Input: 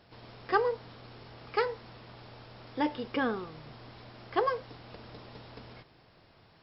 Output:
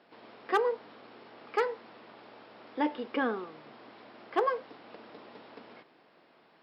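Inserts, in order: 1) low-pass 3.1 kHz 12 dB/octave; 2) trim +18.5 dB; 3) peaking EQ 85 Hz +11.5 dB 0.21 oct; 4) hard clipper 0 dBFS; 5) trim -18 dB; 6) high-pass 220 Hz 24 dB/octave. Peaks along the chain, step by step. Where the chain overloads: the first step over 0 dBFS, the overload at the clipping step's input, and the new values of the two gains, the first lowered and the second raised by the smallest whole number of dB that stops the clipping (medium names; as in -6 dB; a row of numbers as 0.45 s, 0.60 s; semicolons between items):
-13.0 dBFS, +5.5 dBFS, +5.5 dBFS, 0.0 dBFS, -18.0 dBFS, -13.5 dBFS; step 2, 5.5 dB; step 2 +12.5 dB, step 5 -12 dB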